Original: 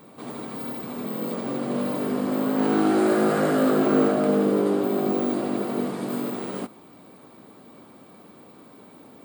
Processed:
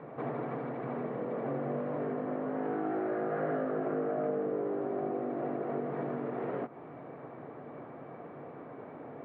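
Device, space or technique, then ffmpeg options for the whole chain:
bass amplifier: -af "acompressor=threshold=0.0178:ratio=6,highpass=70,equalizer=f=140:t=q:w=4:g=9,equalizer=f=200:t=q:w=4:g=-9,equalizer=f=460:t=q:w=4:g=5,equalizer=f=690:t=q:w=4:g=7,equalizer=f=1800:t=q:w=4:g=4,lowpass=f=2100:w=0.5412,lowpass=f=2100:w=1.3066,volume=1.19"

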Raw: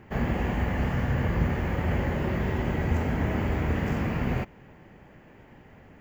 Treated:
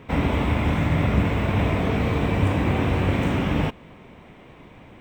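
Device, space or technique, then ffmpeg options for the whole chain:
nightcore: -af "asetrate=52920,aresample=44100,volume=1.78"

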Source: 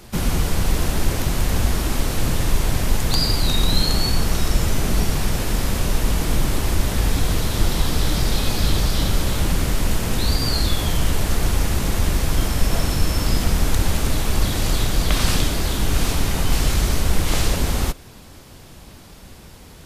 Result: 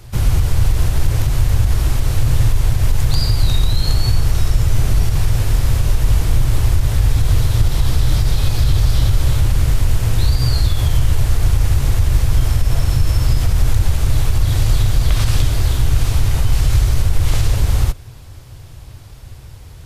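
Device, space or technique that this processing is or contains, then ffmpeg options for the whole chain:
car stereo with a boomy subwoofer: -af "lowshelf=f=150:t=q:w=3:g=8,alimiter=limit=0.708:level=0:latency=1:release=71,volume=0.841"

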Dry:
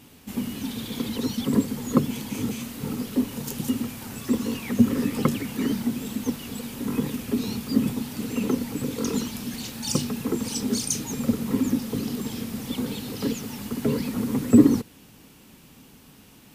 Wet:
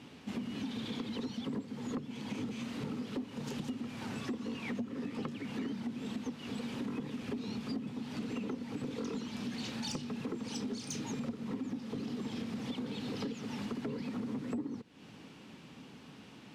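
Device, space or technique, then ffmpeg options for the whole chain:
AM radio: -af "highpass=120,lowpass=4200,acompressor=threshold=0.02:ratio=8,asoftclip=type=tanh:threshold=0.0376"

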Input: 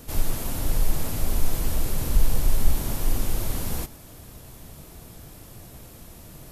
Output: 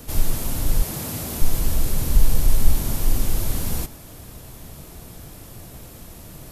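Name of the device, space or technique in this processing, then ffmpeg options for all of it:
one-band saturation: -filter_complex "[0:a]acrossover=split=280|3300[s0][s1][s2];[s1]asoftclip=type=tanh:threshold=0.0126[s3];[s0][s3][s2]amix=inputs=3:normalize=0,asettb=1/sr,asplit=3[s4][s5][s6];[s4]atrim=end=0.824[s7];[s5]atrim=start=0.82:end=1.42,asetpts=PTS-STARTPTS,afade=t=in:d=0.004:c=qsin,afade=t=out:st=0.596:d=0.004:c=qsin,highpass=110[s8];[s6]atrim=start=1.416[s9];[s7][s8]acrossfade=d=0.004:c1=hsin:c2=qsin[s10];[s10][s9]acrossfade=d=0.004:c1=qsin:c2=hsin,volume=1.58"

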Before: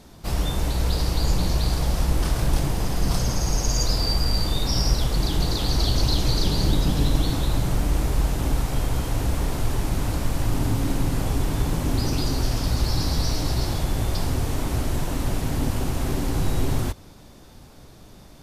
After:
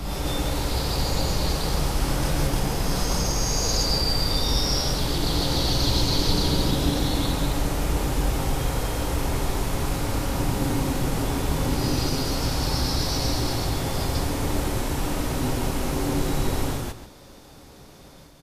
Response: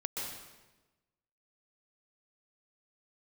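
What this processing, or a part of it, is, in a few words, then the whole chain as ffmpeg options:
reverse reverb: -filter_complex "[0:a]lowshelf=f=270:g=-6,areverse[s0];[1:a]atrim=start_sample=2205[s1];[s0][s1]afir=irnorm=-1:irlink=0,areverse,asplit=2[s2][s3];[s3]adelay=139.9,volume=0.282,highshelf=f=4000:g=-3.15[s4];[s2][s4]amix=inputs=2:normalize=0"

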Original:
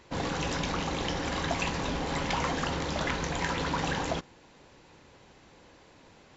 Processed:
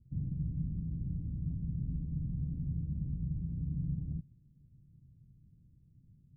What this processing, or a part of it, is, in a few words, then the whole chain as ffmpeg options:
the neighbour's flat through the wall: -af "lowpass=f=170:w=0.5412,lowpass=f=170:w=1.3066,equalizer=f=130:t=o:w=0.5:g=7"

